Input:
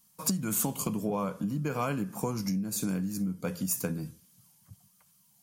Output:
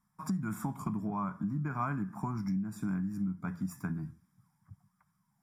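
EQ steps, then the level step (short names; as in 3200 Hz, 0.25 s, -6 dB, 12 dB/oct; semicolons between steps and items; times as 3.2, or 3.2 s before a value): polynomial smoothing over 25 samples; fixed phaser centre 1200 Hz, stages 4; 0.0 dB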